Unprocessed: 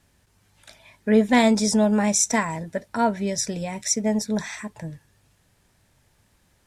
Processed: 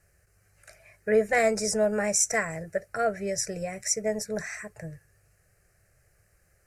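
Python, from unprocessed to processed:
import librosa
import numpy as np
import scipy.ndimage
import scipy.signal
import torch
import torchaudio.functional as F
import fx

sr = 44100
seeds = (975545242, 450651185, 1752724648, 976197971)

y = fx.fixed_phaser(x, sr, hz=940.0, stages=6)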